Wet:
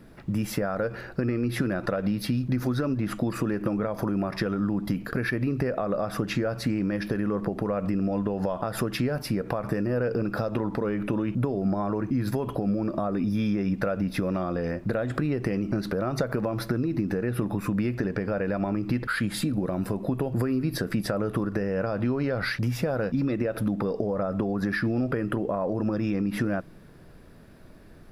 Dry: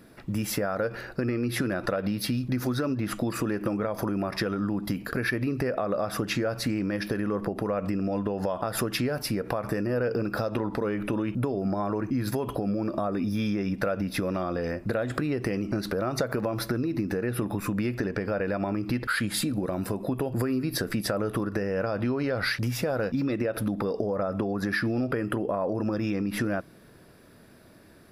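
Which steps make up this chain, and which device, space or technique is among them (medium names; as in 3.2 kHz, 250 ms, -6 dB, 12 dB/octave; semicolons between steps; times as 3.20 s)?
car interior (peaking EQ 160 Hz +4.5 dB 0.85 oct; treble shelf 3.5 kHz -6 dB; brown noise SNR 25 dB)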